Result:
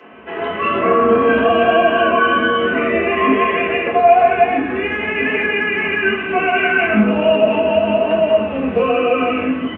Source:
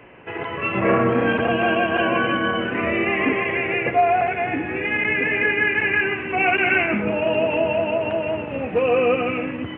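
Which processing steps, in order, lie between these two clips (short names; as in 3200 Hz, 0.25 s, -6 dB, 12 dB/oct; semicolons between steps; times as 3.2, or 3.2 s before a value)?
bands offset in time highs, lows 0.1 s, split 150 Hz; limiter -13.5 dBFS, peak gain reduction 6.5 dB; comb 4.6 ms, depth 46%; reverb RT60 0.50 s, pre-delay 3 ms, DRR -3 dB; flange 1.1 Hz, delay 5.3 ms, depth 6.9 ms, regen +67%; gain +4.5 dB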